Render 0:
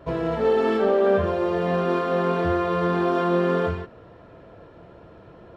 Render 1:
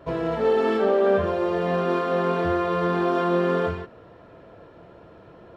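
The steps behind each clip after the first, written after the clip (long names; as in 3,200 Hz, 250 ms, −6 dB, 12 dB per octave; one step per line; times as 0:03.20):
low-shelf EQ 130 Hz −5 dB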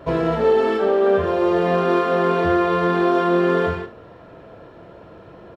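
speech leveller 0.5 s
ambience of single reflections 43 ms −10.5 dB, 74 ms −15.5 dB
level +3.5 dB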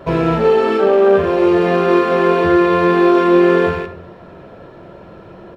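loose part that buzzes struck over −38 dBFS, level −30 dBFS
rectangular room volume 2,700 cubic metres, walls furnished, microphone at 1.1 metres
level +4 dB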